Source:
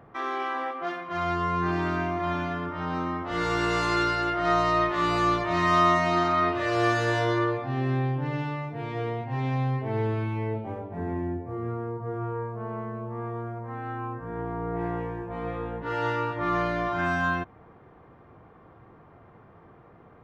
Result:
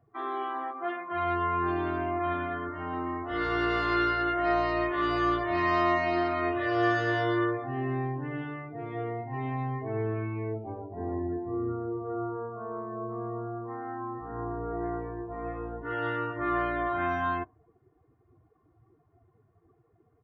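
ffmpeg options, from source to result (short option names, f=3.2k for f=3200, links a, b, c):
-filter_complex "[0:a]asettb=1/sr,asplit=3[a][b][c];[a]atrim=end=10.624[d];[b]atrim=start=10.62:end=14.73,asetpts=PTS-STARTPTS,afade=t=in:d=0.004:c=qsin,afade=t=out:st=4.106:d=0.004:c=qsin,aecho=1:1:349:0.531,atrim=end_sample=181251[e];[c]atrim=start=14.726[f];[d][e]acrossfade=d=0.004:c1=hsin:c2=qsin[g];[g][f]acrossfade=d=0.004:c1=qsin:c2=hsin,afftdn=nr=19:nf=-41,equalizer=f=6.9k:w=1.4:g=-9,aecho=1:1:2.8:0.65,volume=-4.5dB"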